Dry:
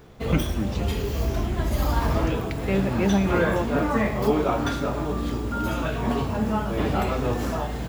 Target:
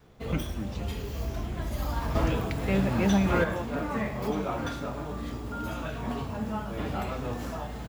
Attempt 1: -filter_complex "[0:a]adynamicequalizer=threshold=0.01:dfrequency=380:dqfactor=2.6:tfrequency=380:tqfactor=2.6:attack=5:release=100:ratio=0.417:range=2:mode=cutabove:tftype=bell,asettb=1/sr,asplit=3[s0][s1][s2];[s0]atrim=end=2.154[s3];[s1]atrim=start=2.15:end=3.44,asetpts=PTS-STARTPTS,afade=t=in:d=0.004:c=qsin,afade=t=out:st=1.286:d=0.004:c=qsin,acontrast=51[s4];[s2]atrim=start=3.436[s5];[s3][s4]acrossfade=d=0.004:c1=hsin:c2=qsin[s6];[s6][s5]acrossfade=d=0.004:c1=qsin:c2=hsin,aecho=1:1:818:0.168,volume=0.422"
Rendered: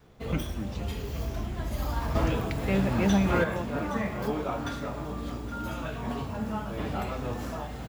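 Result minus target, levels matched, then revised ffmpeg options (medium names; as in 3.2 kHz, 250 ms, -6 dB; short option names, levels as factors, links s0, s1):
echo 410 ms early
-filter_complex "[0:a]adynamicequalizer=threshold=0.01:dfrequency=380:dqfactor=2.6:tfrequency=380:tqfactor=2.6:attack=5:release=100:ratio=0.417:range=2:mode=cutabove:tftype=bell,asettb=1/sr,asplit=3[s0][s1][s2];[s0]atrim=end=2.154[s3];[s1]atrim=start=2.15:end=3.44,asetpts=PTS-STARTPTS,afade=t=in:d=0.004:c=qsin,afade=t=out:st=1.286:d=0.004:c=qsin,acontrast=51[s4];[s2]atrim=start=3.436[s5];[s3][s4]acrossfade=d=0.004:c1=hsin:c2=qsin[s6];[s6][s5]acrossfade=d=0.004:c1=qsin:c2=hsin,aecho=1:1:1228:0.168,volume=0.422"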